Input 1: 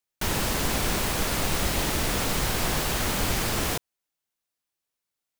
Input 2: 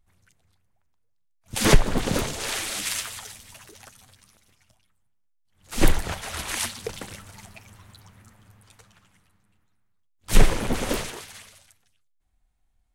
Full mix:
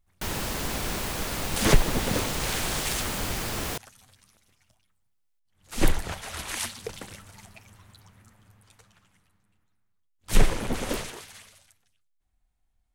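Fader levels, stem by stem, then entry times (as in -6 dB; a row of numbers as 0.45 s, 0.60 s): -4.5 dB, -3.5 dB; 0.00 s, 0.00 s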